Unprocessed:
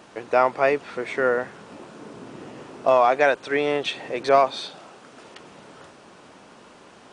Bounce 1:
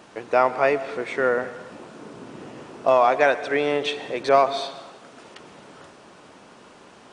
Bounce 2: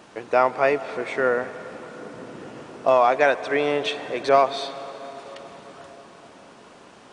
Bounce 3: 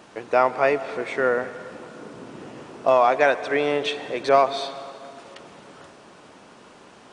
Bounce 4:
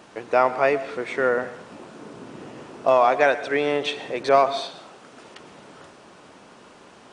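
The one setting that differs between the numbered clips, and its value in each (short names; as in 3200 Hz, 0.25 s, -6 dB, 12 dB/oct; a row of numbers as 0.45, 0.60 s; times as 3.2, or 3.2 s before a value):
plate-style reverb, RT60: 1.1, 5.3, 2.5, 0.53 s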